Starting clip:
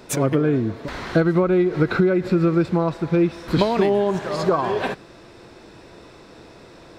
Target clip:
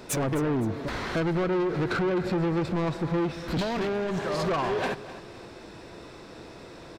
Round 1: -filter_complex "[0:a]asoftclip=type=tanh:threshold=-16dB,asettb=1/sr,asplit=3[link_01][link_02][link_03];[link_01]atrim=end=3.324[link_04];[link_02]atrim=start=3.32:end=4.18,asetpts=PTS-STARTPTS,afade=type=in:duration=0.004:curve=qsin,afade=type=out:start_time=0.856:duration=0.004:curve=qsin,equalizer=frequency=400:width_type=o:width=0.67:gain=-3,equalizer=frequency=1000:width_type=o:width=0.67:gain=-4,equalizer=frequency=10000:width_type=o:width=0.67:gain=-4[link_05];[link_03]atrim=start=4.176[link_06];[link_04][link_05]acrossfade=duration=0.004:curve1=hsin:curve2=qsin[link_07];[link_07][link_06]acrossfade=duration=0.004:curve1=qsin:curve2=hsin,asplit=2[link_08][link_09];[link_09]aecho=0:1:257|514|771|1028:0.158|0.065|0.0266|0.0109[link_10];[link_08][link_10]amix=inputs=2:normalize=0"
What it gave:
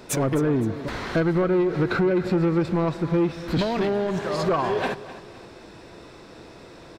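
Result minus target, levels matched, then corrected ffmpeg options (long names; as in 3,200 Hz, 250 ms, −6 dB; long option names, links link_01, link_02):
soft clipping: distortion −6 dB
-filter_complex "[0:a]asoftclip=type=tanh:threshold=-23.5dB,asettb=1/sr,asplit=3[link_01][link_02][link_03];[link_01]atrim=end=3.324[link_04];[link_02]atrim=start=3.32:end=4.18,asetpts=PTS-STARTPTS,afade=type=in:duration=0.004:curve=qsin,afade=type=out:start_time=0.856:duration=0.004:curve=qsin,equalizer=frequency=400:width_type=o:width=0.67:gain=-3,equalizer=frequency=1000:width_type=o:width=0.67:gain=-4,equalizer=frequency=10000:width_type=o:width=0.67:gain=-4[link_05];[link_03]atrim=start=4.176[link_06];[link_04][link_05]acrossfade=duration=0.004:curve1=hsin:curve2=qsin[link_07];[link_07][link_06]acrossfade=duration=0.004:curve1=qsin:curve2=hsin,asplit=2[link_08][link_09];[link_09]aecho=0:1:257|514|771|1028:0.158|0.065|0.0266|0.0109[link_10];[link_08][link_10]amix=inputs=2:normalize=0"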